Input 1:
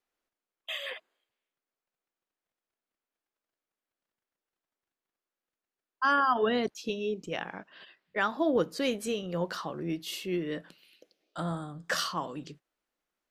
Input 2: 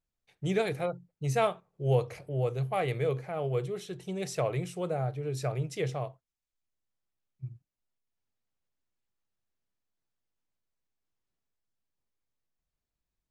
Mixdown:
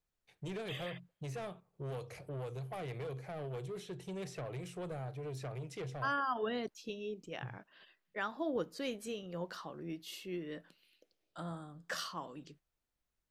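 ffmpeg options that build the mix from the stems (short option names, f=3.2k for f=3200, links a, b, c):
-filter_complex "[0:a]volume=-9.5dB[a];[1:a]acrossover=split=320|3200[b][c][d];[b]acompressor=threshold=-38dB:ratio=4[e];[c]acompressor=threshold=-38dB:ratio=4[f];[d]acompressor=threshold=-54dB:ratio=4[g];[e][f][g]amix=inputs=3:normalize=0,asoftclip=type=tanh:threshold=-35.5dB,volume=-1.5dB[h];[a][h]amix=inputs=2:normalize=0"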